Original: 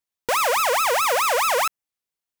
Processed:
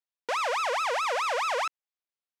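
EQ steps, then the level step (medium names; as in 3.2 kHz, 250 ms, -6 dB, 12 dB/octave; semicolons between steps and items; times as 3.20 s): band-pass 360–5200 Hz; -7.0 dB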